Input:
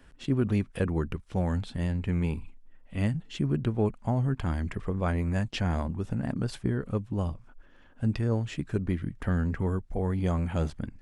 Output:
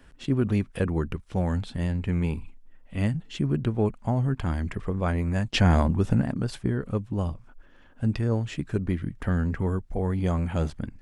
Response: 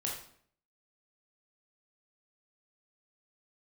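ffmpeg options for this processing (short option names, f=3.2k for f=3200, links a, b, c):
-filter_complex "[0:a]asplit=3[a][b][c];[a]afade=t=out:st=5.53:d=0.02[d];[b]acontrast=76,afade=t=in:st=5.53:d=0.02,afade=t=out:st=6.22:d=0.02[e];[c]afade=t=in:st=6.22:d=0.02[f];[d][e][f]amix=inputs=3:normalize=0,volume=2dB"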